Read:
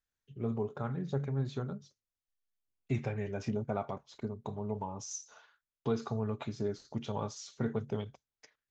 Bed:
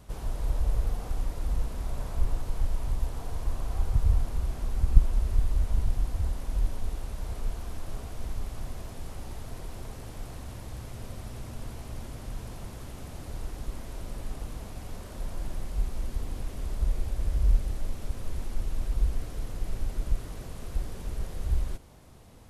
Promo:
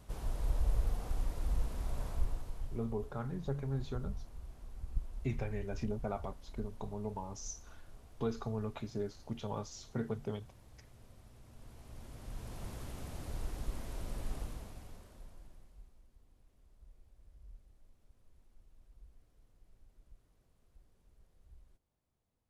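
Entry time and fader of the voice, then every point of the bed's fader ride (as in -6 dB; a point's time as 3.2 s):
2.35 s, -3.5 dB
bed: 2.08 s -5 dB
2.94 s -18.5 dB
11.41 s -18.5 dB
12.68 s -3.5 dB
14.38 s -3.5 dB
16.09 s -32 dB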